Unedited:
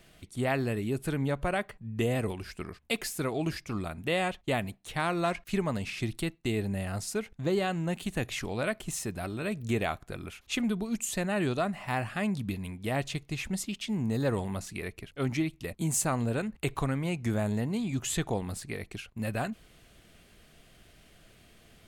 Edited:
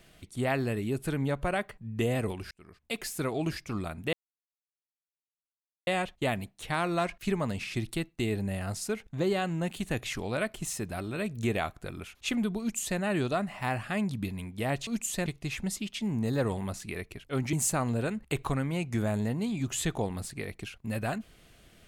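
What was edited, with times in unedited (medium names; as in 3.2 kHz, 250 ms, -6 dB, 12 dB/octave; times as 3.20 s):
2.51–3.17 s: fade in
4.13 s: insert silence 1.74 s
10.86–11.25 s: copy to 13.13 s
15.40–15.85 s: delete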